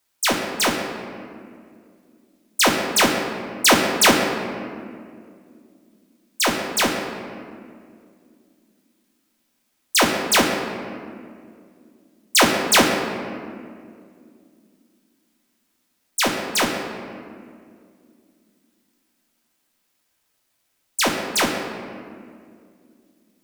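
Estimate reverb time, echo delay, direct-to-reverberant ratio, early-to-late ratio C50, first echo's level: 2.3 s, none, 1.0 dB, 4.0 dB, none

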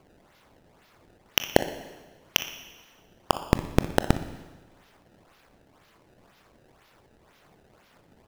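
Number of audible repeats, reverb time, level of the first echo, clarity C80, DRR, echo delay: 2, 1.3 s, -15.0 dB, 13.5 dB, 9.5 dB, 60 ms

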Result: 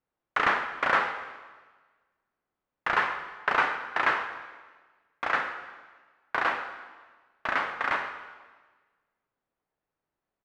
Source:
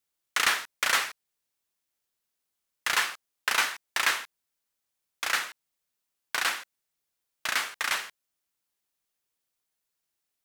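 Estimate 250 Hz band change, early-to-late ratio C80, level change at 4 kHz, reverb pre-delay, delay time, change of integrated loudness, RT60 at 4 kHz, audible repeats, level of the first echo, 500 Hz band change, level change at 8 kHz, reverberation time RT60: +8.5 dB, 9.5 dB, -10.0 dB, 5 ms, 0.131 s, -0.5 dB, 1.3 s, 1, -17.5 dB, +8.5 dB, under -20 dB, 1.4 s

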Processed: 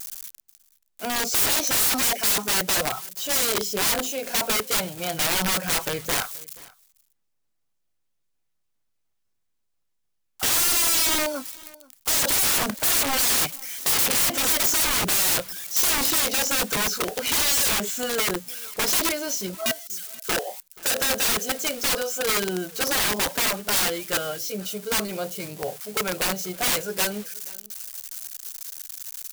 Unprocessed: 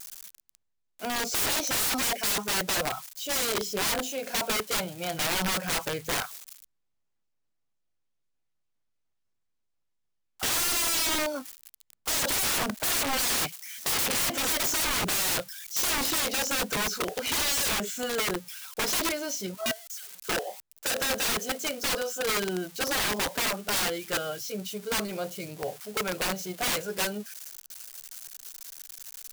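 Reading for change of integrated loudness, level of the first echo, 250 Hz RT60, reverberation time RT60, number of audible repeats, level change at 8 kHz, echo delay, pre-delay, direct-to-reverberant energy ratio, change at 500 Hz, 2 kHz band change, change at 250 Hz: +5.5 dB, -23.0 dB, none, none, 1, +6.0 dB, 0.48 s, none, none, +3.0 dB, +3.5 dB, +3.0 dB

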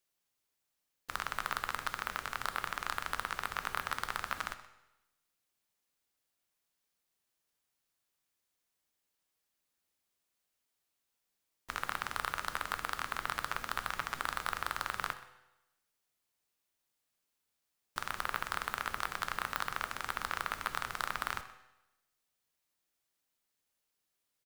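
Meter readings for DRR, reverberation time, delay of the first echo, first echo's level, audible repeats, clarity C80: 9.5 dB, 0.95 s, 0.126 s, -18.5 dB, 1, 13.5 dB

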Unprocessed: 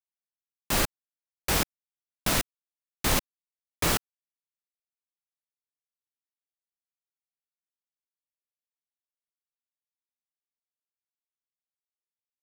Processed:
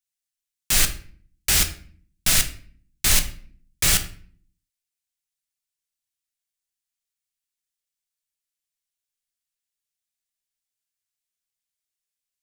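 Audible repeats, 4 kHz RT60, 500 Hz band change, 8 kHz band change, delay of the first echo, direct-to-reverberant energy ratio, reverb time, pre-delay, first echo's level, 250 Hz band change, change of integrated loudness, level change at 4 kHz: none, 0.40 s, -5.5 dB, +10.5 dB, none, 6.5 dB, 0.50 s, 5 ms, none, -3.0 dB, +7.5 dB, +8.0 dB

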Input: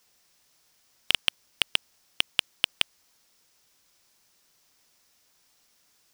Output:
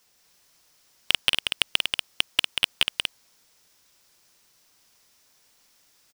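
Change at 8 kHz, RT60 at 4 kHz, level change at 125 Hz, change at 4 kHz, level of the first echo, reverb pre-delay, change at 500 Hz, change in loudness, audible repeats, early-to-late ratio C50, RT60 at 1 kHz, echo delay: +3.5 dB, none, +3.5 dB, +3.5 dB, -5.0 dB, none, +3.5 dB, +3.0 dB, 2, none, none, 0.185 s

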